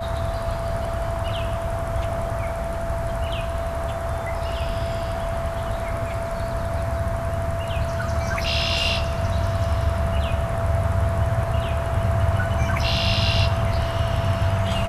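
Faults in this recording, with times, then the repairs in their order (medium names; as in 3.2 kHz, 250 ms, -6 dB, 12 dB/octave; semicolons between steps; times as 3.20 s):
whine 670 Hz -28 dBFS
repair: band-stop 670 Hz, Q 30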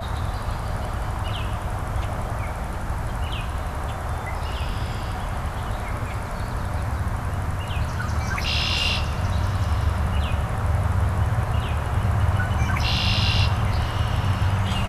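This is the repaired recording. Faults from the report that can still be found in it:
nothing left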